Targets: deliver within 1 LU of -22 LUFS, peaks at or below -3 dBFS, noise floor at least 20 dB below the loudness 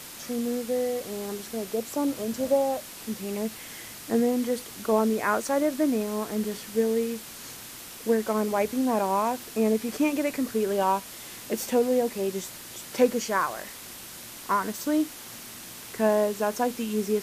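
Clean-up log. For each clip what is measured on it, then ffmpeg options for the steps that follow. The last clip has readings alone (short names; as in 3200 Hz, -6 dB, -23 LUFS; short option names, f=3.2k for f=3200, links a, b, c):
noise floor -43 dBFS; noise floor target -47 dBFS; loudness -27.0 LUFS; peak -9.0 dBFS; loudness target -22.0 LUFS
-> -af "afftdn=nr=6:nf=-43"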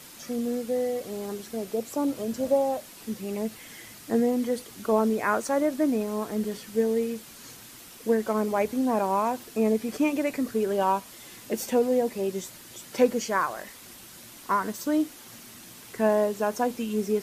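noise floor -47 dBFS; noise floor target -48 dBFS
-> -af "afftdn=nr=6:nf=-47"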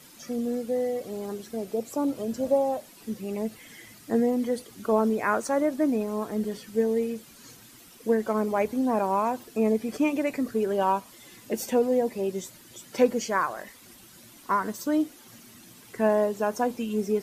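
noise floor -51 dBFS; loudness -27.5 LUFS; peak -9.0 dBFS; loudness target -22.0 LUFS
-> -af "volume=5.5dB"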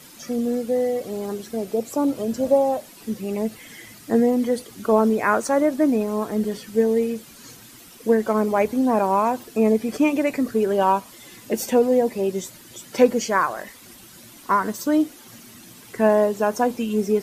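loudness -22.0 LUFS; peak -3.5 dBFS; noise floor -46 dBFS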